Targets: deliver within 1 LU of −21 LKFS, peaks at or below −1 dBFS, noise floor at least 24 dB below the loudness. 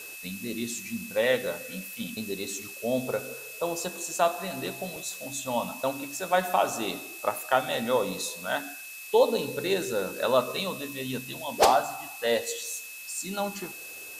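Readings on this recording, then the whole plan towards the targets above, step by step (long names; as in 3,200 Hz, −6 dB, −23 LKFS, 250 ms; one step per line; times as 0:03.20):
interfering tone 2,600 Hz; level of the tone −42 dBFS; background noise floor −42 dBFS; target noise floor −53 dBFS; integrated loudness −29.0 LKFS; sample peak −5.0 dBFS; target loudness −21.0 LKFS
→ notch filter 2,600 Hz, Q 30
noise reduction from a noise print 11 dB
level +8 dB
brickwall limiter −1 dBFS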